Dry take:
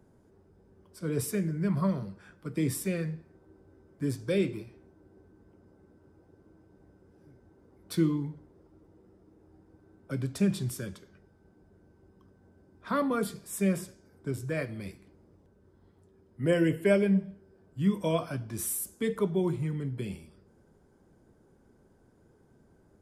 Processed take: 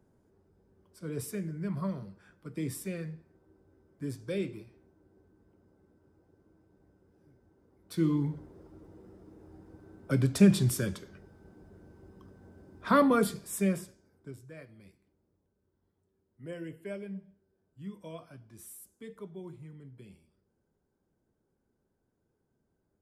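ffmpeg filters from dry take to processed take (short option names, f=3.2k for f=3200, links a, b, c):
-af "volume=6dB,afade=t=in:st=7.95:d=0.4:silence=0.251189,afade=t=out:st=12.91:d=0.94:silence=0.298538,afade=t=out:st=13.85:d=0.6:silence=0.266073"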